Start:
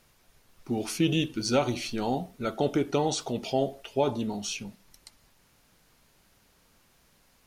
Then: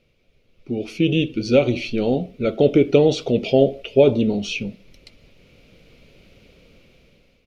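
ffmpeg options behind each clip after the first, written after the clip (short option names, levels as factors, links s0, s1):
-af "equalizer=f=1400:t=o:w=0.74:g=13,dynaudnorm=f=430:g=5:m=4.73,firequalizer=gain_entry='entry(350,0);entry(510,4);entry(860,-19);entry(1600,-25);entry(2300,-1);entry(8100,-22)':delay=0.05:min_phase=1,volume=1.26"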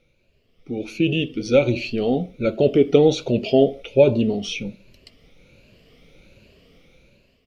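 -af "afftfilt=real='re*pow(10,9/40*sin(2*PI*(1.4*log(max(b,1)*sr/1024/100)/log(2)-(1.3)*(pts-256)/sr)))':imag='im*pow(10,9/40*sin(2*PI*(1.4*log(max(b,1)*sr/1024/100)/log(2)-(1.3)*(pts-256)/sr)))':win_size=1024:overlap=0.75,volume=0.794"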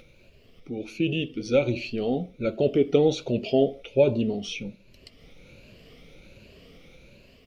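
-af "acompressor=mode=upward:threshold=0.0178:ratio=2.5,volume=0.531"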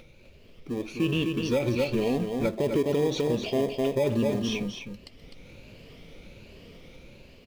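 -filter_complex "[0:a]asplit=2[s0][s1];[s1]acrusher=samples=31:mix=1:aa=0.000001,volume=0.282[s2];[s0][s2]amix=inputs=2:normalize=0,aecho=1:1:254:0.473,alimiter=limit=0.15:level=0:latency=1:release=72"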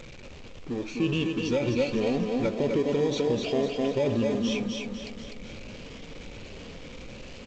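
-af "aeval=exprs='val(0)+0.5*0.0106*sgn(val(0))':c=same,aecho=1:1:250|500|750|1000|1250|1500|1750:0.355|0.199|0.111|0.0623|0.0349|0.0195|0.0109,volume=0.841" -ar 16000 -c:a g722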